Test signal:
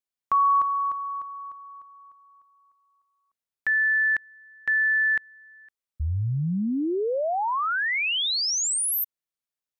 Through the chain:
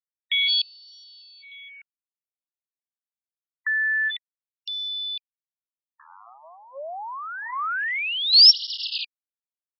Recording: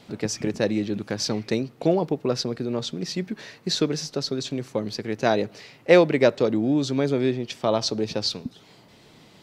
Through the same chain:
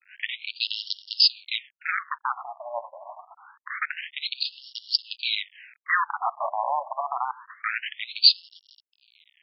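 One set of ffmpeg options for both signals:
ffmpeg -i in.wav -af "aexciter=amount=5.2:drive=1:freq=4500,acrusher=bits=4:dc=4:mix=0:aa=0.000001,afftfilt=real='re*between(b*sr/1024,780*pow(4000/780,0.5+0.5*sin(2*PI*0.26*pts/sr))/1.41,780*pow(4000/780,0.5+0.5*sin(2*PI*0.26*pts/sr))*1.41)':imag='im*between(b*sr/1024,780*pow(4000/780,0.5+0.5*sin(2*PI*0.26*pts/sr))/1.41,780*pow(4000/780,0.5+0.5*sin(2*PI*0.26*pts/sr))*1.41)':win_size=1024:overlap=0.75,volume=5dB" out.wav

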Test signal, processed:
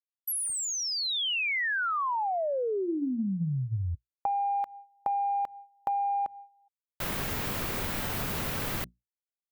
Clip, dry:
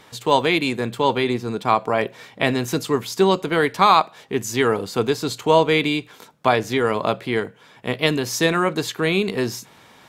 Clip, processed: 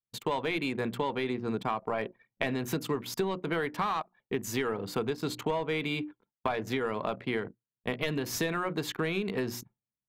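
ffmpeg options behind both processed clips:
ffmpeg -i in.wav -af "aemphasis=mode=production:type=bsi,bandreject=frequency=60:width_type=h:width=6,bandreject=frequency=120:width_type=h:width=6,bandreject=frequency=180:width_type=h:width=6,bandreject=frequency=240:width_type=h:width=6,bandreject=frequency=300:width_type=h:width=6,bandreject=frequency=360:width_type=h:width=6,agate=range=-33dB:threshold=-32dB:ratio=3:detection=peak,asoftclip=type=tanh:threshold=-9dB,bass=frequency=250:gain=11,treble=frequency=4000:gain=-15,acompressor=threshold=-24dB:ratio=10,anlmdn=0.631,volume=-3dB" out.wav

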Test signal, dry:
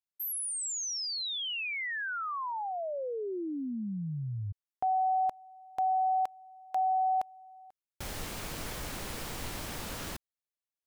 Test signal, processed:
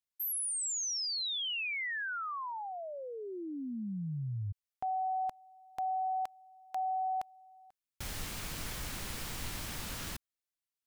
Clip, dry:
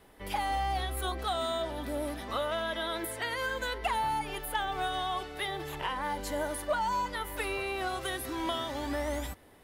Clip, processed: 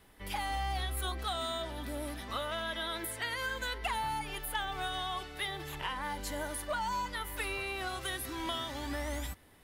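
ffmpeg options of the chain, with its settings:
ffmpeg -i in.wav -af "equalizer=frequency=520:width=0.62:gain=-7" out.wav

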